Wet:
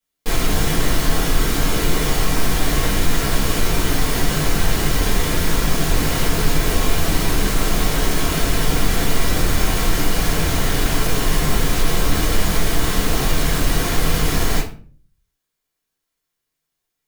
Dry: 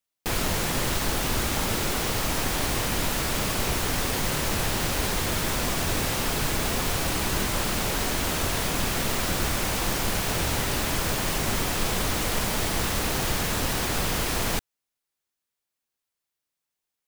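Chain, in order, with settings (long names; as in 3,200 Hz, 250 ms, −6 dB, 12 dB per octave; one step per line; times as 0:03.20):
hard clipping −25 dBFS, distortion −10 dB
rectangular room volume 32 cubic metres, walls mixed, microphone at 1.5 metres
level −2 dB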